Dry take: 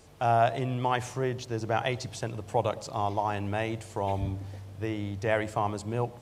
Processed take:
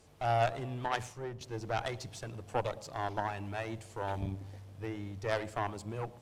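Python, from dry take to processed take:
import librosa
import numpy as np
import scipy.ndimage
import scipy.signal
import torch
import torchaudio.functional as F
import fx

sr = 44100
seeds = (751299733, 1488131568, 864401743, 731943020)

y = fx.cheby_harmonics(x, sr, harmonics=(6,), levels_db=(-16,), full_scale_db=-10.5)
y = fx.band_widen(y, sr, depth_pct=100, at=(0.86, 1.41))
y = F.gain(torch.from_numpy(y), -6.5).numpy()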